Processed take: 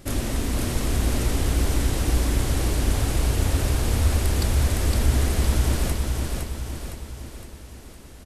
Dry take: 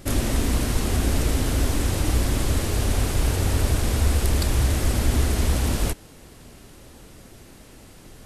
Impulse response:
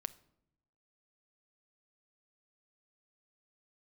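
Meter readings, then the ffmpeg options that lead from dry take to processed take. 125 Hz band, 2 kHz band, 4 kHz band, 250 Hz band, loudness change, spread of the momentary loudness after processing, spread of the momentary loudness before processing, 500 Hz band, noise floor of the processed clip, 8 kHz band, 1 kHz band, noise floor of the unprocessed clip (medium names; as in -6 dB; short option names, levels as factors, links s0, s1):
0.0 dB, -1.0 dB, -1.0 dB, -1.0 dB, -0.5 dB, 15 LU, 2 LU, -1.0 dB, -43 dBFS, -1.0 dB, -1.0 dB, -47 dBFS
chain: -af "aecho=1:1:511|1022|1533|2044|2555|3066|3577:0.668|0.348|0.181|0.094|0.0489|0.0254|0.0132,volume=0.708"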